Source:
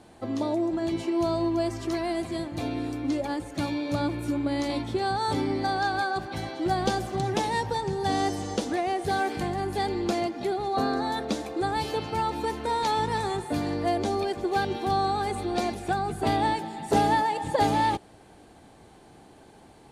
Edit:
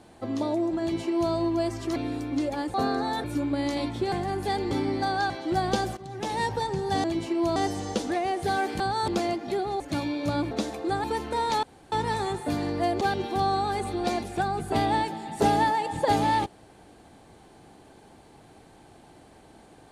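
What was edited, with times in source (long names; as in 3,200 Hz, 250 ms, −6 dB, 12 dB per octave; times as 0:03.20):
0:00.81–0:01.33: duplicate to 0:08.18
0:01.96–0:02.68: remove
0:03.46–0:04.17: swap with 0:10.73–0:11.23
0:05.05–0:05.33: swap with 0:09.42–0:10.01
0:05.92–0:06.44: remove
0:07.11–0:07.52: fade in quadratic, from −14.5 dB
0:11.76–0:12.37: remove
0:12.96: splice in room tone 0.29 s
0:14.05–0:14.52: remove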